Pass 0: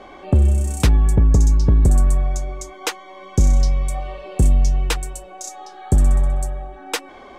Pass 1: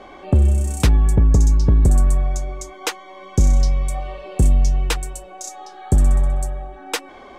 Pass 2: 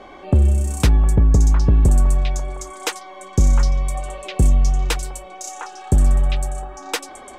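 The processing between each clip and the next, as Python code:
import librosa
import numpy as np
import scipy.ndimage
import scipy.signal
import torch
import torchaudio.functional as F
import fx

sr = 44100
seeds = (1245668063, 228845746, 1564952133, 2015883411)

y1 = x
y2 = fx.echo_stepped(y1, sr, ms=708, hz=1100.0, octaves=1.4, feedback_pct=70, wet_db=-2.0)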